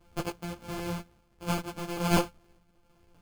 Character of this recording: a buzz of ramps at a fixed pitch in blocks of 256 samples; random-step tremolo 3.5 Hz; aliases and images of a low sample rate 1900 Hz, jitter 0%; a shimmering, thickened sound

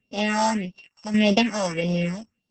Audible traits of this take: a buzz of ramps at a fixed pitch in blocks of 16 samples; random-step tremolo; phasing stages 4, 1.7 Hz, lowest notch 380–1800 Hz; Opus

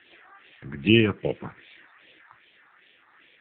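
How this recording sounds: phasing stages 4, 2.5 Hz, lowest notch 510–1100 Hz; tremolo triangle 2.3 Hz, depth 35%; AMR-NB

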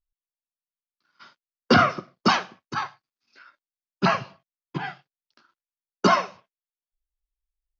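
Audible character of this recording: noise floor -97 dBFS; spectral tilt -3.0 dB/oct

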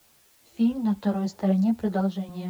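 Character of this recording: random-step tremolo; a quantiser's noise floor 10-bit, dither triangular; a shimmering, thickened sound

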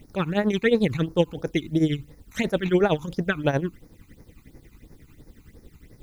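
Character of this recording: tremolo triangle 11 Hz, depth 85%; a quantiser's noise floor 12-bit, dither triangular; phasing stages 12, 2.9 Hz, lowest notch 540–3100 Hz

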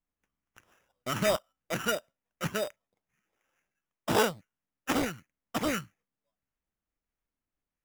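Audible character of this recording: phasing stages 4, 1.5 Hz, lowest notch 650–4800 Hz; aliases and images of a low sample rate 4300 Hz, jitter 0%

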